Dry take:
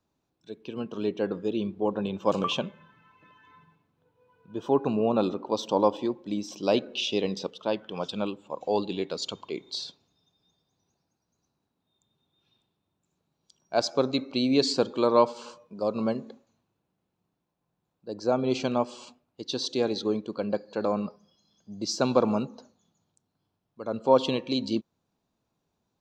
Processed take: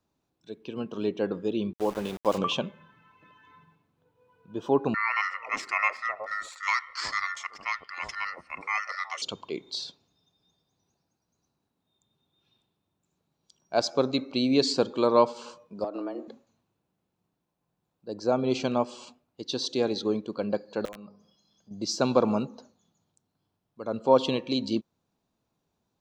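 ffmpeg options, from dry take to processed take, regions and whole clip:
ffmpeg -i in.wav -filter_complex "[0:a]asettb=1/sr,asplit=3[link_01][link_02][link_03];[link_01]atrim=end=1.734[link_04];[link_02]atrim=start=1.73:end=2.38,asetpts=PTS-STARTPTS,afade=type=in:duration=0.004:curve=qsin,afade=type=out:start_time=0.646:duration=0.004:curve=qsin,bass=frequency=250:gain=-5,treble=frequency=4000:gain=2,aeval=exprs='val(0)*gte(abs(val(0)),0.0141)':channel_layout=same[link_05];[link_03]atrim=start=2.376[link_06];[link_04][link_05]acrossfade=duration=0.004:curve1=hsin:curve2=qsin[link_07];[link_07][link_06]acrossfade=duration=0.004:curve1=qsin:curve2=hsin,asettb=1/sr,asplit=3[link_08][link_09][link_10];[link_08]atrim=end=4.944[link_11];[link_09]atrim=start=4.94:end=9.22,asetpts=PTS-STARTPTS,afade=type=in:duration=0.004:curve=qsin,afade=type=out:start_time=4.276:duration=0.004:curve=qsin,aeval=exprs='val(0)*sin(2*PI*1600*n/s)':channel_layout=same,acrossover=split=700[link_12][link_13];[link_12]adelay=370[link_14];[link_14][link_13]amix=inputs=2:normalize=0,atrim=end_sample=188748[link_15];[link_10]atrim=start=9.216[link_16];[link_11][link_15]acrossfade=duration=0.004:curve1=hsin:curve2=qsin[link_17];[link_17][link_16]acrossfade=duration=0.004:curve1=qsin:curve2=hsin,asettb=1/sr,asplit=3[link_18][link_19][link_20];[link_18]atrim=end=15.844[link_21];[link_19]atrim=start=15.84:end=16.28,asetpts=PTS-STARTPTS,afade=type=in:duration=0.004:curve=qsin,afade=type=out:start_time=0.436:duration=0.004:curve=qsin,equalizer=frequency=5600:width_type=o:width=1.5:gain=-8,acompressor=threshold=-29dB:ratio=10:attack=3.2:release=140:knee=1:detection=peak,afreqshift=94[link_22];[link_20]atrim=start=16.276[link_23];[link_21][link_22]acrossfade=duration=0.004:curve1=hsin:curve2=qsin[link_24];[link_24][link_23]acrossfade=duration=0.004:curve1=qsin:curve2=hsin,asettb=1/sr,asplit=3[link_25][link_26][link_27];[link_25]atrim=end=20.854[link_28];[link_26]atrim=start=20.85:end=21.71,asetpts=PTS-STARTPTS,afade=type=in:duration=0.004:curve=qsin,afade=type=out:start_time=0.856:duration=0.004:curve=qsin,bandreject=frequency=50:width_type=h:width=6,bandreject=frequency=100:width_type=h:width=6,bandreject=frequency=150:width_type=h:width=6,bandreject=frequency=200:width_type=h:width=6,bandreject=frequency=250:width_type=h:width=6,bandreject=frequency=300:width_type=h:width=6,bandreject=frequency=350:width_type=h:width=6,bandreject=frequency=400:width_type=h:width=6,bandreject=frequency=450:width_type=h:width=6,acompressor=threshold=-53dB:ratio=2:attack=3.2:release=140:knee=1:detection=peak,aeval=exprs='(mod(44.7*val(0)+1,2)-1)/44.7':channel_layout=same[link_29];[link_27]atrim=start=21.706[link_30];[link_28][link_29]acrossfade=duration=0.004:curve1=hsin:curve2=qsin[link_31];[link_31][link_30]acrossfade=duration=0.004:curve1=qsin:curve2=hsin" out.wav

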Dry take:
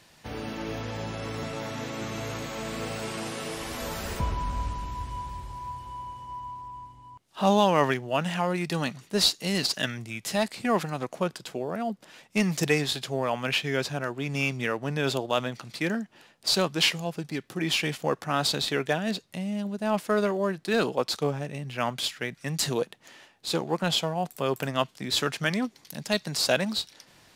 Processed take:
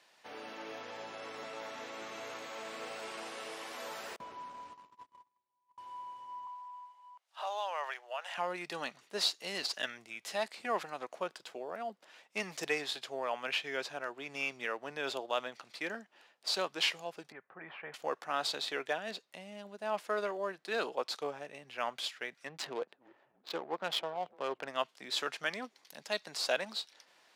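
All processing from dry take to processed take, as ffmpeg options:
ffmpeg -i in.wav -filter_complex "[0:a]asettb=1/sr,asplit=3[link_01][link_02][link_03];[link_01]atrim=end=4.164[link_04];[link_02]atrim=start=4.16:end=5.78,asetpts=PTS-STARTPTS,afade=type=in:duration=0.004:curve=qsin,afade=type=out:start_time=1.616:duration=0.004:curve=qsin,agate=range=-38dB:threshold=-32dB:ratio=16:release=100:detection=peak,equalizer=frequency=270:width_type=o:width=2.2:gain=4.5,acompressor=threshold=-35dB:ratio=2:attack=3.2:release=140:knee=1:detection=peak[link_05];[link_03]atrim=start=5.776[link_06];[link_04][link_05]acrossfade=duration=0.004:curve1=hsin:curve2=qsin[link_07];[link_07][link_06]acrossfade=duration=0.004:curve1=qsin:curve2=hsin,asettb=1/sr,asplit=3[link_08][link_09][link_10];[link_08]atrim=end=6.474[link_11];[link_09]atrim=start=6.47:end=8.38,asetpts=PTS-STARTPTS,afade=type=in:duration=0.004:curve=qsin,afade=type=out:start_time=1.906:duration=0.004:curve=qsin,highpass=frequency=590:width=0.5412,highpass=frequency=590:width=1.3066,acompressor=threshold=-30dB:ratio=2:attack=3.2:release=140:knee=1:detection=peak[link_12];[link_10]atrim=start=8.376[link_13];[link_11][link_12]acrossfade=duration=0.004:curve1=hsin:curve2=qsin[link_14];[link_14][link_13]acrossfade=duration=0.004:curve1=qsin:curve2=hsin,asettb=1/sr,asplit=3[link_15][link_16][link_17];[link_15]atrim=end=17.324[link_18];[link_16]atrim=start=17.32:end=17.94,asetpts=PTS-STARTPTS,afade=type=in:duration=0.004:curve=qsin,afade=type=out:start_time=0.616:duration=0.004:curve=qsin,lowpass=frequency=1700:width=0.5412,lowpass=frequency=1700:width=1.3066,equalizer=frequency=310:width_type=o:width=0.87:gain=-12[link_19];[link_17]atrim=start=17.936[link_20];[link_18][link_19]acrossfade=duration=0.004:curve1=hsin:curve2=qsin[link_21];[link_21][link_20]acrossfade=duration=0.004:curve1=qsin:curve2=hsin,asettb=1/sr,asplit=3[link_22][link_23][link_24];[link_22]atrim=end=22.474[link_25];[link_23]atrim=start=22.47:end=24.68,asetpts=PTS-STARTPTS,afade=type=in:duration=0.004:curve=qsin,afade=type=out:start_time=2.206:duration=0.004:curve=qsin,asplit=5[link_26][link_27][link_28][link_29][link_30];[link_27]adelay=292,afreqshift=-140,volume=-21dB[link_31];[link_28]adelay=584,afreqshift=-280,volume=-26.4dB[link_32];[link_29]adelay=876,afreqshift=-420,volume=-31.7dB[link_33];[link_30]adelay=1168,afreqshift=-560,volume=-37.1dB[link_34];[link_26][link_31][link_32][link_33][link_34]amix=inputs=5:normalize=0,atrim=end_sample=97461,adynamicsmooth=sensitivity=4:basefreq=830[link_35];[link_24]atrim=start=24.676[link_36];[link_25][link_35]acrossfade=duration=0.004:curve1=hsin:curve2=qsin[link_37];[link_37][link_36]acrossfade=duration=0.004:curve1=qsin:curve2=hsin,highpass=500,highshelf=frequency=6900:gain=-10,volume=-6dB" out.wav

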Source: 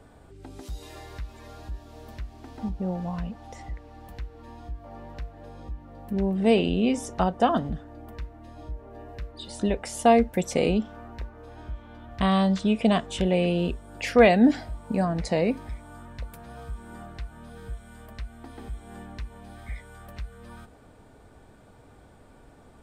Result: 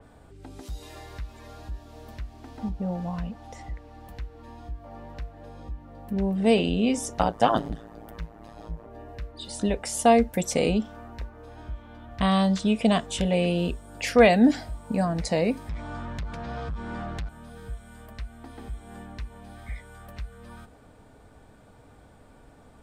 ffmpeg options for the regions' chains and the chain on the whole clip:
ffmpeg -i in.wav -filter_complex "[0:a]asettb=1/sr,asplit=3[link_01][link_02][link_03];[link_01]atrim=end=7.194[link_04];[link_02]atrim=start=7.19:end=8.87,asetpts=PTS-STARTPTS,afade=type=in:duration=0.004:curve=qsin,afade=type=out:start_time=1.676:duration=0.004:curve=qsin,equalizer=frequency=110:width=0.7:gain=-8,acontrast=58,tremolo=f=110:d=0.974[link_05];[link_03]atrim=start=8.866[link_06];[link_04][link_05]acrossfade=duration=0.004:curve1=hsin:curve2=qsin[link_07];[link_07][link_06]acrossfade=duration=0.004:curve1=qsin:curve2=hsin,asettb=1/sr,asplit=3[link_08][link_09][link_10];[link_08]atrim=end=15.694[link_11];[link_09]atrim=start=15.69:end=17.29,asetpts=PTS-STARTPTS,afade=type=in:duration=0.004:curve=qsin,afade=type=out:start_time=1.596:duration=0.004:curve=qsin,lowpass=frequency=5600:width=0.5412,lowpass=frequency=5600:width=1.3066,acompressor=threshold=-37dB:ratio=2:attack=3.2:release=140:knee=1:detection=peak,aeval=exprs='0.0398*sin(PI/2*2*val(0)/0.0398)':channel_layout=same[link_12];[link_10]atrim=start=17.286[link_13];[link_11][link_12]acrossfade=duration=0.004:curve1=hsin:curve2=qsin[link_14];[link_14][link_13]acrossfade=duration=0.004:curve1=qsin:curve2=hsin,bandreject=frequency=370:width=12,adynamicequalizer=threshold=0.00562:dfrequency=4200:dqfactor=0.7:tfrequency=4200:tqfactor=0.7:attack=5:release=100:ratio=0.375:range=3:mode=boostabove:tftype=highshelf" out.wav

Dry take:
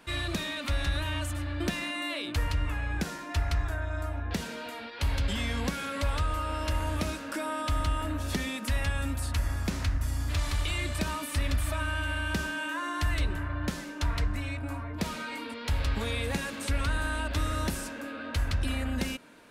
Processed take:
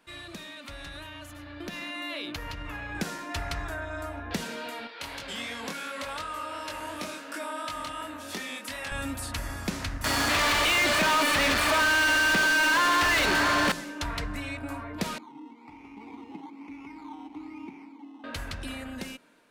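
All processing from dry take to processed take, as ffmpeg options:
ffmpeg -i in.wav -filter_complex "[0:a]asettb=1/sr,asplit=3[link_01][link_02][link_03];[link_01]atrim=end=1.064[link_04];[link_02]atrim=start=1.06:end=2.95,asetpts=PTS-STARTPTS,afade=type=in:duration=0.004:curve=qsin,afade=type=out:start_time=1.886:duration=0.004:curve=qsin,equalizer=frequency=8500:width_type=o:width=0.29:gain=-11.5,acompressor=threshold=-29dB:ratio=2.5:attack=3.2:release=140:knee=1:detection=peak[link_05];[link_03]atrim=start=2.946[link_06];[link_04][link_05]acrossfade=duration=0.004:curve1=hsin:curve2=qsin[link_07];[link_07][link_06]acrossfade=duration=0.004:curve1=qsin:curve2=hsin,asettb=1/sr,asplit=3[link_08][link_09][link_10];[link_08]atrim=end=4.874[link_11];[link_09]atrim=start=4.87:end=8.92,asetpts=PTS-STARTPTS,afade=type=in:duration=0.004:curve=qsin,afade=type=out:start_time=4.046:duration=0.004:curve=qsin,highpass=frequency=380:poles=1,flanger=delay=20:depth=5.5:speed=2.8[link_12];[link_10]atrim=start=8.916[link_13];[link_11][link_12]acrossfade=duration=0.004:curve1=hsin:curve2=qsin[link_14];[link_14][link_13]acrossfade=duration=0.004:curve1=qsin:curve2=hsin,asettb=1/sr,asplit=3[link_15][link_16][link_17];[link_15]atrim=end=10.044[link_18];[link_16]atrim=start=10.04:end=13.72,asetpts=PTS-STARTPTS,afade=type=in:duration=0.004:curve=qsin,afade=type=out:start_time=3.676:duration=0.004:curve=qsin,acrossover=split=3600[link_19][link_20];[link_20]acompressor=threshold=-50dB:ratio=4:attack=1:release=60[link_21];[link_19][link_21]amix=inputs=2:normalize=0,aeval=exprs='val(0)+0.002*sin(2*PI*4400*n/s)':channel_layout=same,asplit=2[link_22][link_23];[link_23]highpass=frequency=720:poles=1,volume=37dB,asoftclip=type=tanh:threshold=-19dB[link_24];[link_22][link_24]amix=inputs=2:normalize=0,lowpass=frequency=5100:poles=1,volume=-6dB[link_25];[link_17]atrim=start=13.716[link_26];[link_18][link_25]acrossfade=duration=0.004:curve1=hsin:curve2=qsin[link_27];[link_27][link_26]acrossfade=duration=0.004:curve1=qsin:curve2=hsin,asettb=1/sr,asplit=3[link_28][link_29][link_30];[link_28]atrim=end=15.184[link_31];[link_29]atrim=start=15.18:end=18.24,asetpts=PTS-STARTPTS,afade=type=in:duration=0.004:curve=qsin,afade=type=out:start_time=3.056:duration=0.004:curve=qsin,acrusher=samples=15:mix=1:aa=0.000001:lfo=1:lforange=9:lforate=1.1,asplit=3[link_32][link_33][link_34];[link_32]bandpass=frequency=300:width_type=q:width=8,volume=0dB[link_35];[link_33]bandpass=frequency=870:width_type=q:width=8,volume=-6dB[link_36];[link_34]bandpass=frequency=2240:width_type=q:width=8,volume=-9dB[link_37];[link_35][link_36][link_37]amix=inputs=3:normalize=0[link_38];[link_30]atrim=start=18.236[link_39];[link_31][link_38]acrossfade=duration=0.004:curve1=hsin:curve2=qsin[link_40];[link_40][link_39]acrossfade=duration=0.004:curve1=qsin:curve2=hsin,equalizer=frequency=64:width_type=o:width=1.4:gain=-14,dynaudnorm=framelen=570:gausssize=7:maxgain=11dB,volume=-8.5dB" out.wav

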